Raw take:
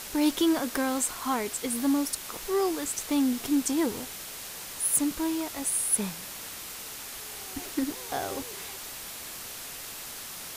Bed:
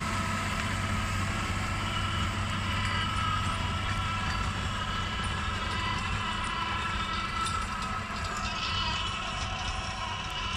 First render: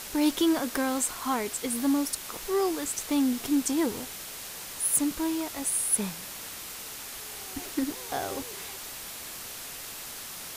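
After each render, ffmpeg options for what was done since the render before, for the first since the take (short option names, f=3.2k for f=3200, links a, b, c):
-af anull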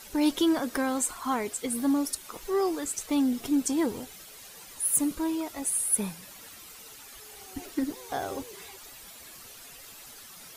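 -af "afftdn=nr=11:nf=-41"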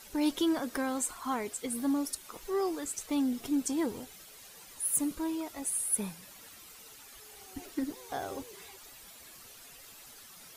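-af "volume=-4.5dB"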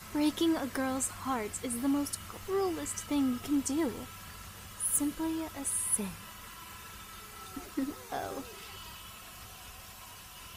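-filter_complex "[1:a]volume=-18dB[a];[0:a][a]amix=inputs=2:normalize=0"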